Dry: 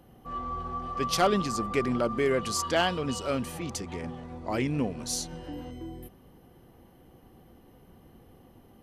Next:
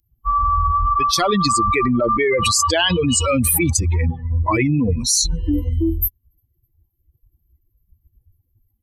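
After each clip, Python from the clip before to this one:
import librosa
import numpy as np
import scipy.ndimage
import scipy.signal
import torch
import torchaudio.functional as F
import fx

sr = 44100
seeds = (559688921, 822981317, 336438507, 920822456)

y = fx.bin_expand(x, sr, power=3.0)
y = fx.peak_eq(y, sr, hz=6200.0, db=12.5, octaves=2.8)
y = fx.env_flatten(y, sr, amount_pct=100)
y = y * librosa.db_to_amplitude(2.0)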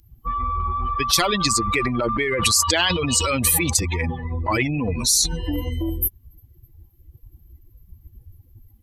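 y = fx.high_shelf(x, sr, hz=7800.0, db=-5.0)
y = fx.spectral_comp(y, sr, ratio=2.0)
y = y * librosa.db_to_amplitude(4.0)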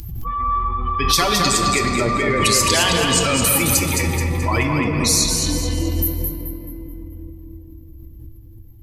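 y = fx.echo_feedback(x, sr, ms=215, feedback_pct=41, wet_db=-5)
y = fx.room_shoebox(y, sr, seeds[0], volume_m3=190.0, walls='hard', distance_m=0.33)
y = fx.pre_swell(y, sr, db_per_s=39.0)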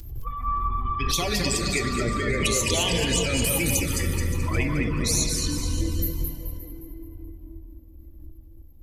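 y = fx.octave_divider(x, sr, octaves=2, level_db=-4.0)
y = fx.env_flanger(y, sr, rest_ms=4.3, full_db=-12.0)
y = fx.echo_multitap(y, sr, ms=(213, 570), db=(-12.0, -16.0))
y = y * librosa.db_to_amplitude(-5.0)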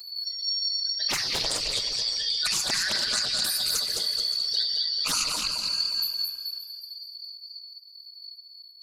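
y = fx.band_shuffle(x, sr, order='4321')
y = fx.doppler_dist(y, sr, depth_ms=0.7)
y = y * librosa.db_to_amplitude(-3.0)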